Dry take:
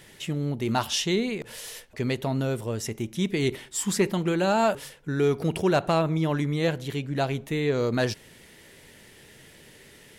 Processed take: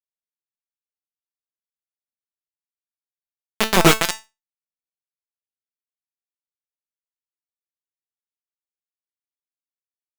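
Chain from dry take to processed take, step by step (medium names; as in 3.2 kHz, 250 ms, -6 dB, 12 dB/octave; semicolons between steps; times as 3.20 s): Doppler pass-by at 3.83 s, 34 m/s, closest 2.8 m; band-pass 120–4700 Hz; bit crusher 4-bit; feedback comb 220 Hz, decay 0.21 s, harmonics all, mix 70%; compression 4:1, threshold -44 dBFS, peak gain reduction 13.5 dB; loudness maximiser +35.5 dB; trim -1 dB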